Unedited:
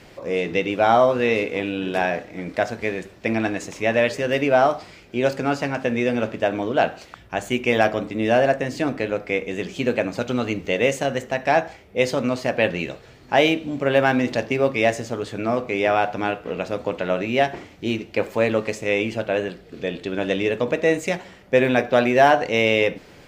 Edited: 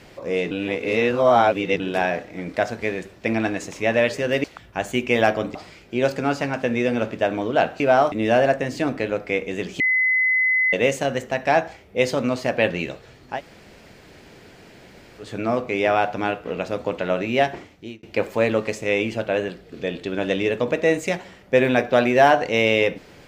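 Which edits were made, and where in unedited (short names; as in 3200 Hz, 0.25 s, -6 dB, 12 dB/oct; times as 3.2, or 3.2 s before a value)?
0.51–1.8 reverse
4.44–4.76 swap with 7.01–8.12
9.8–10.73 bleep 2030 Hz -16 dBFS
13.33–15.25 room tone, crossfade 0.16 s
17.5–18.03 fade out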